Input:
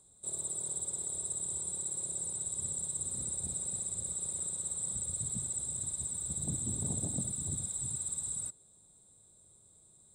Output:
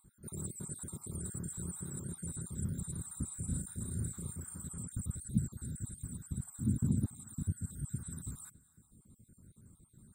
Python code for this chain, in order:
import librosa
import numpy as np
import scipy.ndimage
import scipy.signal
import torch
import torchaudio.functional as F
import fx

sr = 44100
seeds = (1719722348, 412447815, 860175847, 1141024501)

y = fx.spec_dropout(x, sr, seeds[0], share_pct=48)
y = fx.curve_eq(y, sr, hz=(160.0, 240.0, 460.0, 700.0, 1500.0, 2700.0, 4000.0, 7900.0, 12000.0), db=(0, 3, -15, -23, -3, -19, -21, -23, -2))
y = fx.rider(y, sr, range_db=5, speed_s=2.0)
y = fx.doubler(y, sr, ms=36.0, db=-6, at=(3.3, 4.67), fade=0.02)
y = fx.echo_feedback(y, sr, ms=285, feedback_pct=33, wet_db=-23.5)
y = y * 10.0 ** (9.0 / 20.0)